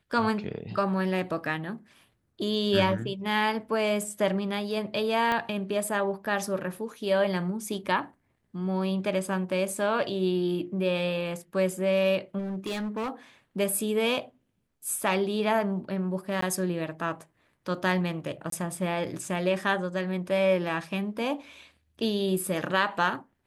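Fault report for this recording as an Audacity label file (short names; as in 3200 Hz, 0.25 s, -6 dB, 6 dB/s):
5.320000	5.320000	pop -15 dBFS
12.380000	13.100000	clipped -28.5 dBFS
16.410000	16.420000	gap 14 ms
18.500000	18.520000	gap 23 ms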